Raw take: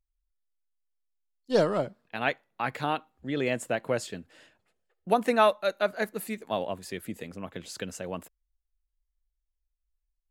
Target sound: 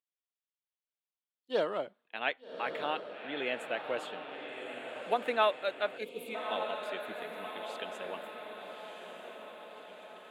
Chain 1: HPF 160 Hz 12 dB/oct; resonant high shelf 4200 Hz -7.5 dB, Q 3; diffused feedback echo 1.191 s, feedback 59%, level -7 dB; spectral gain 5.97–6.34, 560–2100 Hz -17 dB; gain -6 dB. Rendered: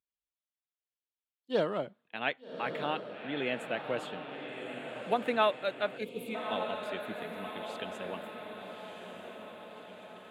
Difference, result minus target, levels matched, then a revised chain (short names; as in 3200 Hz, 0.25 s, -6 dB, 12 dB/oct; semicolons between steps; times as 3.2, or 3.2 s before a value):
125 Hz band +10.0 dB
HPF 360 Hz 12 dB/oct; resonant high shelf 4200 Hz -7.5 dB, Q 3; diffused feedback echo 1.191 s, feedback 59%, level -7 dB; spectral gain 5.97–6.34, 560–2100 Hz -17 dB; gain -6 dB